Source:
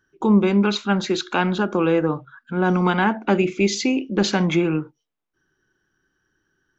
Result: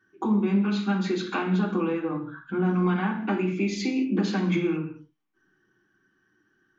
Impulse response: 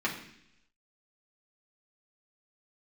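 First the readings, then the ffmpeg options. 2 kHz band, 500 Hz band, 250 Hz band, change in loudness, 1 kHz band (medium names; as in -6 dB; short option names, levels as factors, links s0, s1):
-8.0 dB, -8.0 dB, -4.0 dB, -5.5 dB, -8.0 dB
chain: -filter_complex "[0:a]acompressor=threshold=0.0447:ratio=5[s0];[1:a]atrim=start_sample=2205,afade=t=out:st=0.28:d=0.01,atrim=end_sample=12789[s1];[s0][s1]afir=irnorm=-1:irlink=0,volume=0.501"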